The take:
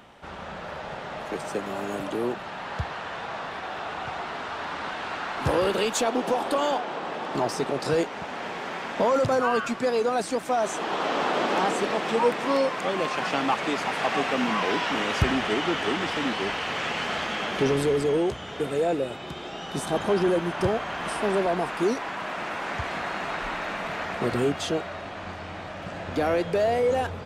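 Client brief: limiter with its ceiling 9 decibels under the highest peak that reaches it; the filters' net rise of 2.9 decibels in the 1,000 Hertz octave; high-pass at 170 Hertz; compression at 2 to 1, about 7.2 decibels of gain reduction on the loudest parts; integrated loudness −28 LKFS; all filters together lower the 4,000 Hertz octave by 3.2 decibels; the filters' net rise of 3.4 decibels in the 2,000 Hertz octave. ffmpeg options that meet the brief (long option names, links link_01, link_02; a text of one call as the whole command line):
ffmpeg -i in.wav -af "highpass=170,equalizer=frequency=1000:width_type=o:gain=3,equalizer=frequency=2000:width_type=o:gain=5,equalizer=frequency=4000:width_type=o:gain=-7.5,acompressor=threshold=-30dB:ratio=2,volume=5.5dB,alimiter=limit=-19.5dB:level=0:latency=1" out.wav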